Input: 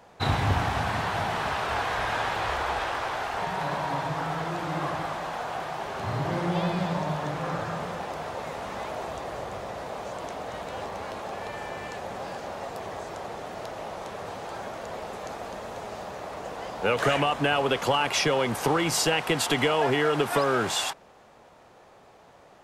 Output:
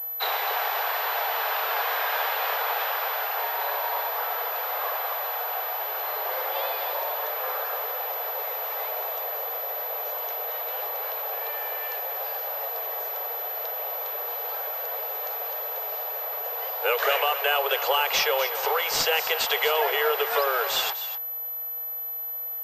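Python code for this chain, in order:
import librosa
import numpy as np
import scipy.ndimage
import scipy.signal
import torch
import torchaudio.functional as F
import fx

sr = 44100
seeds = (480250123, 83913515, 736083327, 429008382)

y = scipy.signal.sosfilt(scipy.signal.butter(16, 420.0, 'highpass', fs=sr, output='sos'), x)
y = fx.high_shelf(y, sr, hz=4000.0, db=8.5)
y = y + 10.0 ** (-12.0 / 20.0) * np.pad(y, (int(250 * sr / 1000.0), 0))[:len(y)]
y = fx.pwm(y, sr, carrier_hz=12000.0)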